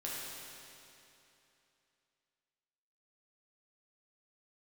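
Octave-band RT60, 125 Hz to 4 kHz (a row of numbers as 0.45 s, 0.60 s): 2.9 s, 2.9 s, 2.9 s, 2.9 s, 2.9 s, 2.7 s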